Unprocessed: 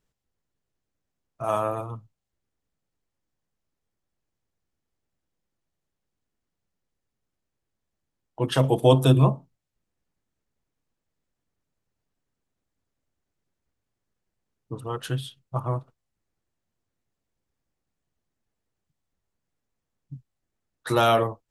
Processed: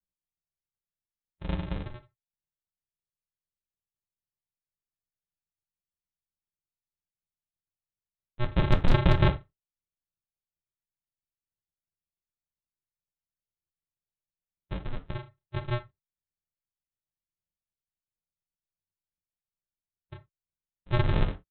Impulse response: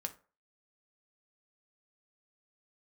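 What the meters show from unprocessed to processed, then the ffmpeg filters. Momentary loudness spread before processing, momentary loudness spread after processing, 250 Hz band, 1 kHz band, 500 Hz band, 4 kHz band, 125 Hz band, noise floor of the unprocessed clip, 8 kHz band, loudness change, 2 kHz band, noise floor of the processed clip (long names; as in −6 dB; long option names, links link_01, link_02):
19 LU, 17 LU, −5.5 dB, −9.5 dB, −11.0 dB, −7.0 dB, −4.0 dB, −83 dBFS, below −20 dB, −5.5 dB, −0.5 dB, below −85 dBFS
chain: -filter_complex "[0:a]lowpass=frequency=440:width_type=q:width=4.9,afwtdn=0.0158,aresample=8000,acrusher=samples=33:mix=1:aa=0.000001,aresample=44100,aeval=exprs='0.562*(cos(1*acos(clip(val(0)/0.562,-1,1)))-cos(1*PI/2))+0.0251*(cos(2*acos(clip(val(0)/0.562,-1,1)))-cos(2*PI/2))+0.00398*(cos(3*acos(clip(val(0)/0.562,-1,1)))-cos(3*PI/2))':channel_layout=same[link_01];[1:a]atrim=start_sample=2205,atrim=end_sample=3969[link_02];[link_01][link_02]afir=irnorm=-1:irlink=0,volume=-4dB"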